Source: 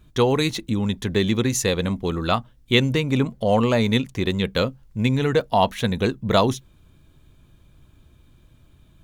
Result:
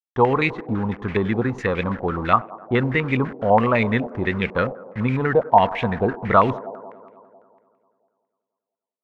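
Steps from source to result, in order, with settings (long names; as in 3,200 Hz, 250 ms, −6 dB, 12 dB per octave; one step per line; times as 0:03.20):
bit reduction 6 bits
on a send: delay with a band-pass on its return 98 ms, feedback 74%, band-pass 520 Hz, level −16 dB
on the sum: low-pass on a step sequencer 12 Hz 770–2,300 Hz
level −1.5 dB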